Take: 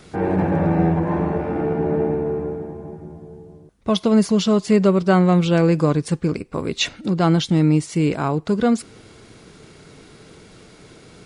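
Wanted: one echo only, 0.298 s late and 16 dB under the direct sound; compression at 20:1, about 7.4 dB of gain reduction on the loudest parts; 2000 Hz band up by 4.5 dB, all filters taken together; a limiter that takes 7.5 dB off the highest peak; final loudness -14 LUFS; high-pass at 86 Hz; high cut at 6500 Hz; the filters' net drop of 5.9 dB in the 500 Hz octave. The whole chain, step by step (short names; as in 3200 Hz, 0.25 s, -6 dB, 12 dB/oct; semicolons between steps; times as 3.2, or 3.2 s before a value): HPF 86 Hz; LPF 6500 Hz; bell 500 Hz -8 dB; bell 2000 Hz +7 dB; compressor 20:1, threshold -20 dBFS; limiter -19 dBFS; echo 0.298 s -16 dB; gain +14 dB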